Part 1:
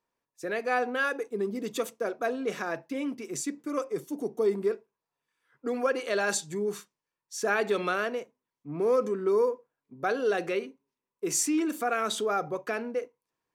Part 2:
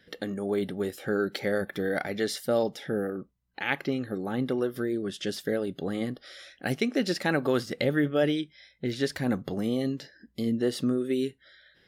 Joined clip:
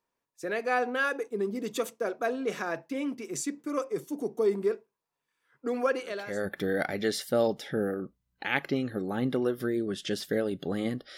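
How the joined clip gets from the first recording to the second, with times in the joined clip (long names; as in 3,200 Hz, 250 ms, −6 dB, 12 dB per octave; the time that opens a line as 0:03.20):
part 1
0:06.23: continue with part 2 from 0:01.39, crossfade 0.60 s quadratic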